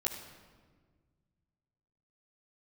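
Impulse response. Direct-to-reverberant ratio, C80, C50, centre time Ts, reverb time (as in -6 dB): -5.0 dB, 8.0 dB, 7.0 dB, 38 ms, 1.6 s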